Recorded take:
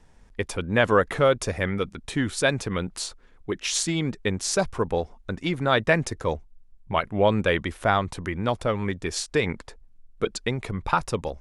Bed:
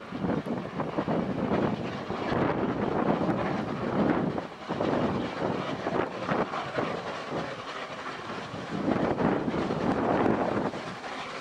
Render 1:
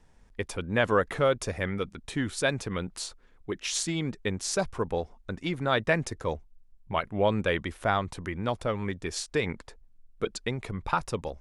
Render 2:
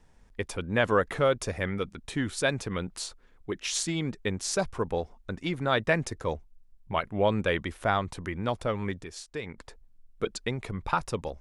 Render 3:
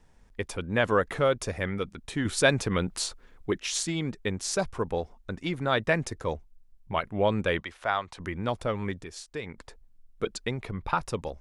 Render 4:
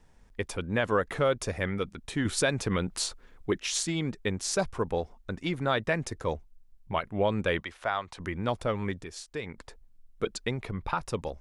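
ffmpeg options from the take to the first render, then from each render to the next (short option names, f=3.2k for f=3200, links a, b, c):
-af "volume=-4.5dB"
-filter_complex "[0:a]asplit=3[a][b][c];[a]atrim=end=9.042[d];[b]atrim=start=9.038:end=9.582,asetpts=PTS-STARTPTS,volume=-8.5dB[e];[c]atrim=start=9.578[f];[d][e]acrossfade=d=0.004:c1=hsin:c2=hsin[g];[g][f]acrossfade=d=0.004:c1=hsin:c2=hsin"
-filter_complex "[0:a]asettb=1/sr,asplit=3[a][b][c];[a]atrim=end=2.254[d];[b]atrim=start=2.25:end=3.58,asetpts=PTS-STARTPTS,afade=t=in:d=0.004:c=qsin,afade=t=out:st=1.326:d=0.004:c=qsin,acontrast=30[e];[c]atrim=start=3.576[f];[d][e]acrossfade=d=0.004:c1=hsin:c2=qsin[g];[g][f]acrossfade=d=0.004:c1=qsin:c2=hsin,asettb=1/sr,asplit=3[h][i][j];[h]atrim=end=7.604[k];[i]atrim=start=7.6:end=8.2,asetpts=PTS-STARTPTS,afade=t=in:d=0.004:c=qsin,afade=t=out:st=0.596:d=0.004:c=qsin,acrossover=split=550 7100:gain=0.224 1 0.224[l][m][n];[l][m][n]amix=inputs=3:normalize=0[o];[j]atrim=start=8.196[p];[k][o]acrossfade=d=0.004:c1=hsin:c2=qsin[q];[q][p]acrossfade=d=0.004:c1=qsin:c2=hsin,asettb=1/sr,asplit=3[r][s][t];[r]atrim=end=10.604[u];[s]atrim=start=10.6:end=11.03,asetpts=PTS-STARTPTS,afade=t=in:d=0.004:c=qsin,afade=t=out:st=0.426:d=0.004:c=qsin,equalizer=f=7.8k:t=o:w=0.77:g=-8.5[v];[t]atrim=start=11.026[w];[u][v]acrossfade=d=0.004:c1=hsin:c2=qsin[x];[x][w]acrossfade=d=0.004:c1=qsin:c2=hsin"
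-af "alimiter=limit=-15.5dB:level=0:latency=1:release=233"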